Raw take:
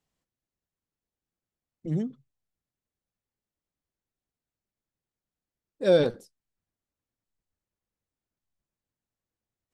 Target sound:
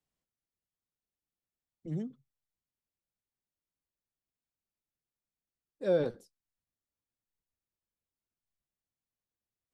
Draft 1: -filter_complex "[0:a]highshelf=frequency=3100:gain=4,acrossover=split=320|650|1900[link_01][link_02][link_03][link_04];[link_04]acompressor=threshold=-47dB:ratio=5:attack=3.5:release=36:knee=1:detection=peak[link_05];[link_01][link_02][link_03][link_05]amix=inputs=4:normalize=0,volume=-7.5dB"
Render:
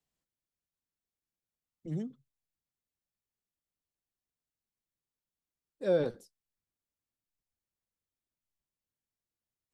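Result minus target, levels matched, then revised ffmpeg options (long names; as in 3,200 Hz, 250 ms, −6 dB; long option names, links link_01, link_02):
8,000 Hz band +3.0 dB
-filter_complex "[0:a]acrossover=split=320|650|1900[link_01][link_02][link_03][link_04];[link_04]acompressor=threshold=-47dB:ratio=5:attack=3.5:release=36:knee=1:detection=peak[link_05];[link_01][link_02][link_03][link_05]amix=inputs=4:normalize=0,volume=-7.5dB"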